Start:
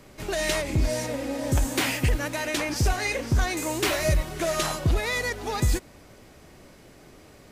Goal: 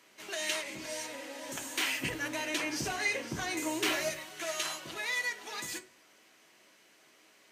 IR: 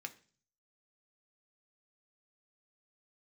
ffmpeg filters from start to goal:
-filter_complex "[0:a]asetnsamples=nb_out_samples=441:pad=0,asendcmd='2 highpass f 160;4.08 highpass f 1100',highpass=frequency=900:poles=1[link_01];[1:a]atrim=start_sample=2205,asetrate=52920,aresample=44100[link_02];[link_01][link_02]afir=irnorm=-1:irlink=0"

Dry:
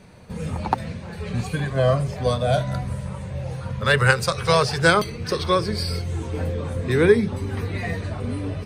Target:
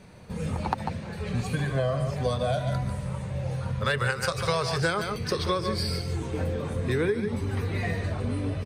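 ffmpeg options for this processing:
ffmpeg -i in.wav -filter_complex "[0:a]asplit=2[link_01][link_02];[link_02]aecho=0:1:145|154:0.316|0.106[link_03];[link_01][link_03]amix=inputs=2:normalize=0,acompressor=threshold=-20dB:ratio=12,volume=-2dB" out.wav

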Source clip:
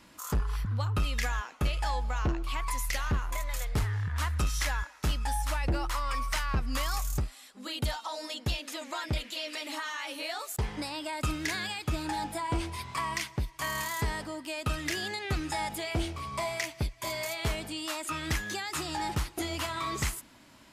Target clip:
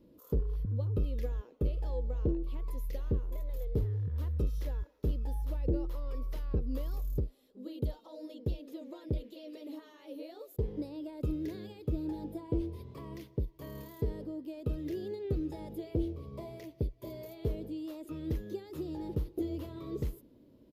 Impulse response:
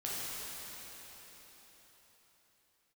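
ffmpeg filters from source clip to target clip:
-af "firequalizer=gain_entry='entry(200,0);entry(470,8);entry(720,-15);entry(1400,-24);entry(2200,-24);entry(3500,-18);entry(8200,-29);entry(13000,-10)':delay=0.05:min_phase=1,volume=-2dB"

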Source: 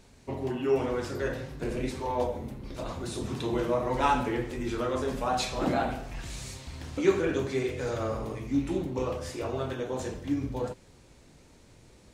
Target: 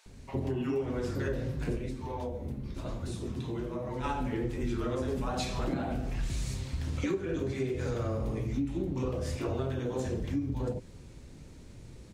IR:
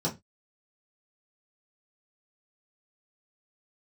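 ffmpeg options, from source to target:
-filter_complex "[0:a]lowshelf=frequency=310:gain=9.5,acrossover=split=780[link_01][link_02];[link_01]adelay=60[link_03];[link_03][link_02]amix=inputs=2:normalize=0,acompressor=threshold=-28dB:ratio=12,asplit=3[link_04][link_05][link_06];[link_04]afade=type=out:start_time=1.76:duration=0.02[link_07];[link_05]flanger=delay=8.7:depth=6.5:regen=-54:speed=1:shape=sinusoidal,afade=type=in:start_time=1.76:duration=0.02,afade=type=out:start_time=4.03:duration=0.02[link_08];[link_06]afade=type=in:start_time=4.03:duration=0.02[link_09];[link_07][link_08][link_09]amix=inputs=3:normalize=0"

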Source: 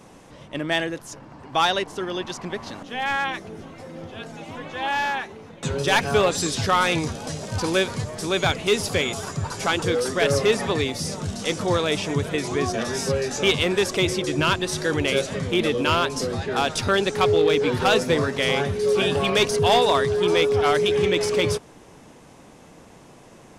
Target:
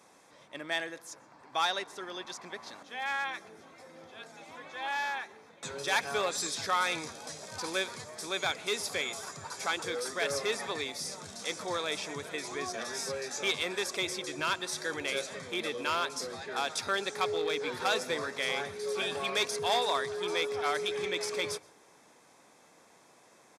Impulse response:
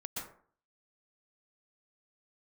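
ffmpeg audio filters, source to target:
-filter_complex "[0:a]highpass=frequency=900:poles=1,bandreject=frequency=2900:width=5.8,asplit=2[link_01][link_02];[1:a]atrim=start_sample=2205[link_03];[link_02][link_03]afir=irnorm=-1:irlink=0,volume=-21dB[link_04];[link_01][link_04]amix=inputs=2:normalize=0,aresample=32000,aresample=44100,volume=-7dB"

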